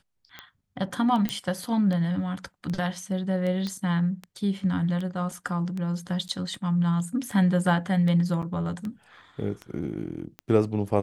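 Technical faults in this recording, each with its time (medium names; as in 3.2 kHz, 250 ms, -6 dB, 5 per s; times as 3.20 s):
tick 78 rpm -22 dBFS
1.29 s: pop -12 dBFS
3.67 s: pop -18 dBFS
6.28–6.29 s: dropout 8.9 ms
8.42–8.43 s: dropout 6.9 ms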